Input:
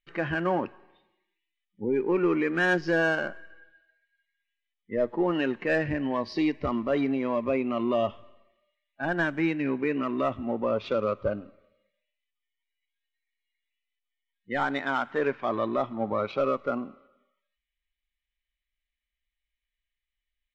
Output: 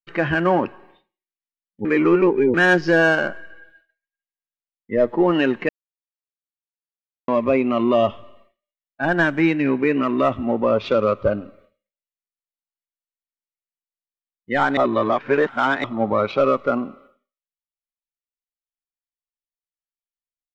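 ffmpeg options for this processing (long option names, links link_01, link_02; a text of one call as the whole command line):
ffmpeg -i in.wav -filter_complex "[0:a]asplit=7[link_01][link_02][link_03][link_04][link_05][link_06][link_07];[link_01]atrim=end=1.852[link_08];[link_02]atrim=start=1.848:end=2.542,asetpts=PTS-STARTPTS,areverse[link_09];[link_03]atrim=start=2.538:end=5.69,asetpts=PTS-STARTPTS,afade=type=out:start_time=3.148:duration=0.004:curve=hsin[link_10];[link_04]atrim=start=5.69:end=7.28,asetpts=PTS-STARTPTS,volume=0[link_11];[link_05]atrim=start=7.28:end=14.772,asetpts=PTS-STARTPTS,afade=type=in:duration=0.004:curve=hsin[link_12];[link_06]atrim=start=14.768:end=15.842,asetpts=PTS-STARTPTS,areverse[link_13];[link_07]atrim=start=15.838[link_14];[link_08][link_09]acrossfade=duration=0.004:curve1=hsin:curve2=hsin[link_15];[link_10][link_11][link_12]concat=n=3:v=0:a=1[link_16];[link_15][link_16]acrossfade=duration=0.004:curve1=hsin:curve2=hsin[link_17];[link_17][link_13]acrossfade=duration=0.004:curve1=hsin:curve2=hsin[link_18];[link_18][link_14]acrossfade=duration=0.004:curve1=hsin:curve2=hsin,agate=range=-33dB:threshold=-57dB:ratio=3:detection=peak,volume=8.5dB" out.wav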